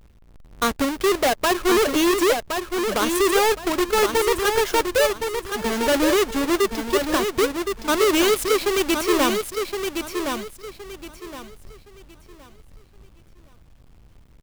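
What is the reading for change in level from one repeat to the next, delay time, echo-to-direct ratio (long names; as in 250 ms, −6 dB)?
−11.0 dB, 1,067 ms, −5.5 dB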